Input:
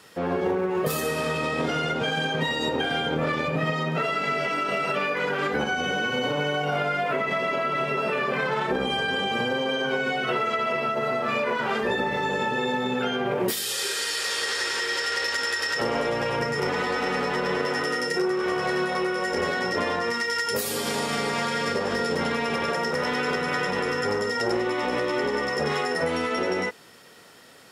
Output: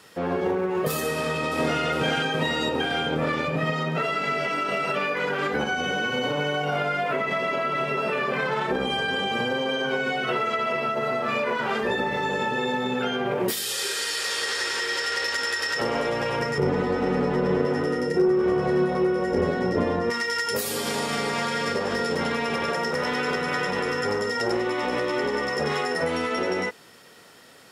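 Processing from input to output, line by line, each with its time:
1.1–1.81 echo throw 0.41 s, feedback 60%, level -3.5 dB
16.58–20.1 tilt shelf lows +9.5 dB, about 710 Hz

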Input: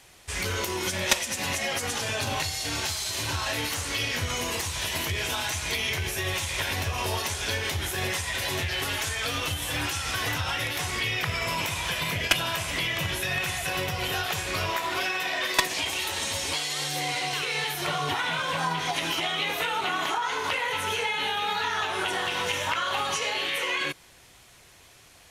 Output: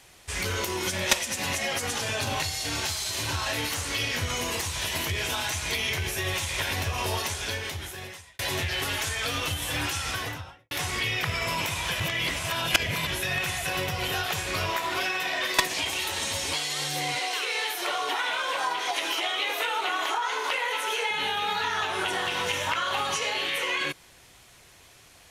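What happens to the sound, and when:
7.21–8.39 fade out
10.03–10.71 studio fade out
12–13.07 reverse
17.19–21.11 HPF 340 Hz 24 dB/oct

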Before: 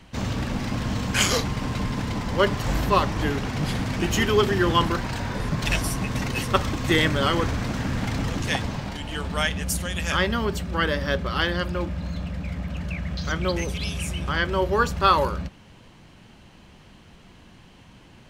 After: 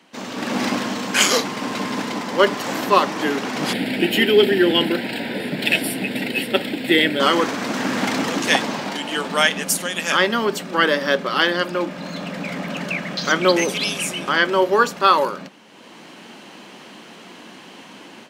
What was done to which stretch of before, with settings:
3.73–7.2 fixed phaser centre 2700 Hz, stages 4
whole clip: HPF 230 Hz 24 dB/oct; AGC gain up to 13.5 dB; gain -1 dB

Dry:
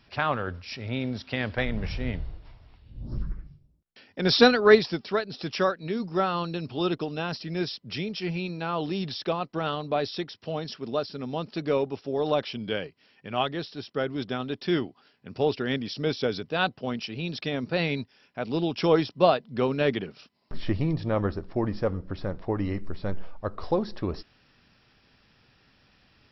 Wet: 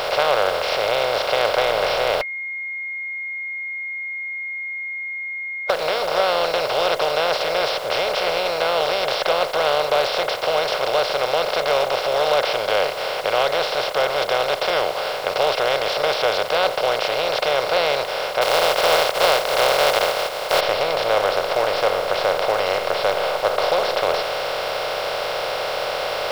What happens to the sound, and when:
2.21–5.7 bleep 2140 Hz -22 dBFS
18.41–20.59 spectral contrast lowered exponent 0.29
whole clip: per-bin compression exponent 0.2; resonant low shelf 390 Hz -12.5 dB, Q 3; notch 1800 Hz, Q 26; gain -4.5 dB

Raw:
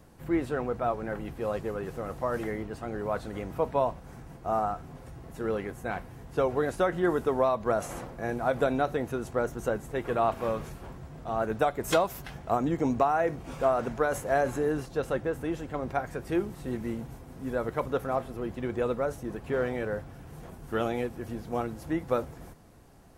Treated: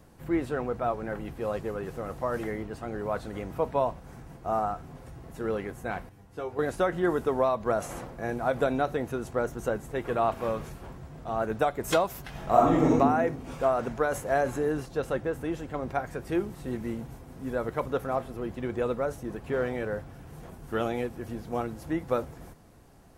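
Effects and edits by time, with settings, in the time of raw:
6.09–6.59 resonator 100 Hz, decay 0.22 s, mix 90%
12.3–12.97 reverb throw, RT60 1 s, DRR -5.5 dB

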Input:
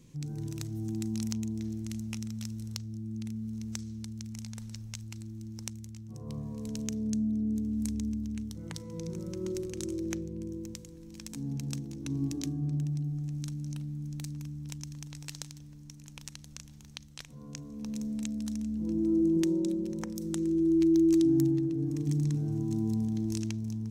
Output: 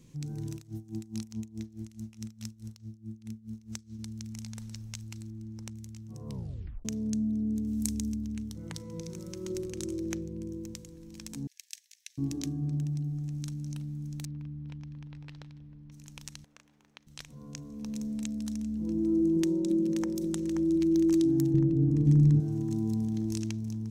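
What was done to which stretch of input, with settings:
0.54–3.99 dB-linear tremolo 4.7 Hz, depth 20 dB
5.3–5.77 high shelf 2700 Hz -9.5 dB
6.3 tape stop 0.55 s
7.67–8.16 high shelf 4400 Hz +10.5 dB
9.01–9.5 tilt shelf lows -4 dB, about 1300 Hz
11.47–12.18 steep high-pass 1700 Hz 96 dB/oct
14.25–15.92 air absorption 390 m
16.44–17.07 three-band isolator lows -23 dB, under 310 Hz, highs -17 dB, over 2500 Hz
19.17–20.11 echo throw 0.53 s, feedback 60%, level -5.5 dB
21.54–22.4 tilt -3 dB/oct

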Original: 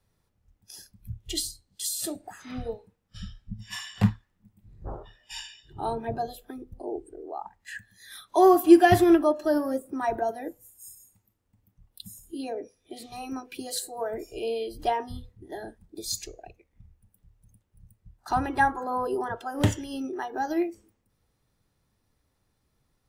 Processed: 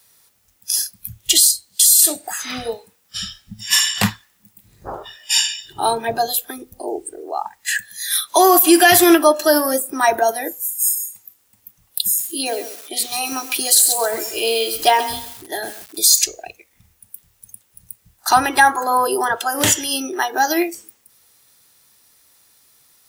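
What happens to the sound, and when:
12.04–16.19 lo-fi delay 0.132 s, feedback 35%, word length 8-bit, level -12 dB
whole clip: tilt +4.5 dB/oct; maximiser +14.5 dB; gain -1 dB

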